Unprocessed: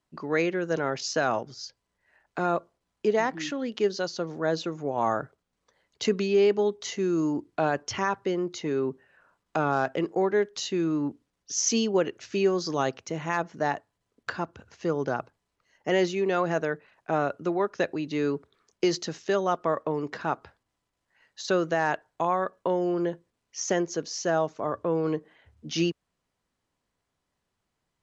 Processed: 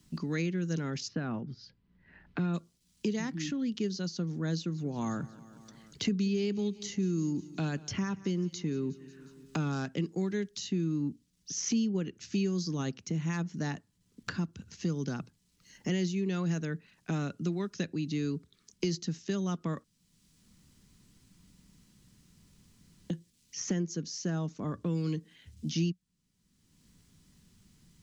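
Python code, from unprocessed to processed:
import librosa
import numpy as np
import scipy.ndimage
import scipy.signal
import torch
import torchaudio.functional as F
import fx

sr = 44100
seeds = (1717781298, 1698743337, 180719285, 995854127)

y = fx.air_absorb(x, sr, metres=400.0, at=(1.07, 2.53), fade=0.02)
y = fx.echo_feedback(y, sr, ms=180, feedback_pct=49, wet_db=-21, at=(4.52, 9.72))
y = fx.edit(y, sr, fx.room_tone_fill(start_s=19.84, length_s=3.26), tone=tone)
y = fx.curve_eq(y, sr, hz=(130.0, 180.0, 640.0, 5500.0), db=(0, 6, -21, -2))
y = fx.band_squash(y, sr, depth_pct=70)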